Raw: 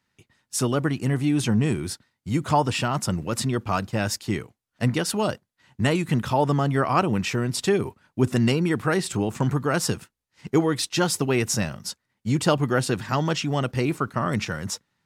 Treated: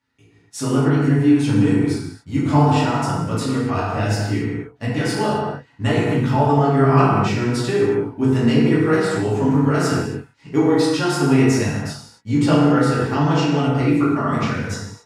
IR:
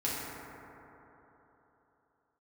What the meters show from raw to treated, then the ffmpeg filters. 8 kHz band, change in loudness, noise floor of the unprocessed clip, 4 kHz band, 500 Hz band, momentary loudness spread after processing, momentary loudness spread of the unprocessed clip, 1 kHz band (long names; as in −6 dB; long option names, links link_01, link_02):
−3.0 dB, +6.0 dB, −80 dBFS, +0.5 dB, +6.0 dB, 10 LU, 8 LU, +5.0 dB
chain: -filter_complex "[0:a]highshelf=frequency=9200:gain=-11,flanger=delay=16:depth=6.3:speed=0.66[link_01];[1:a]atrim=start_sample=2205,afade=type=out:start_time=0.33:duration=0.01,atrim=end_sample=14994[link_02];[link_01][link_02]afir=irnorm=-1:irlink=0,volume=1dB"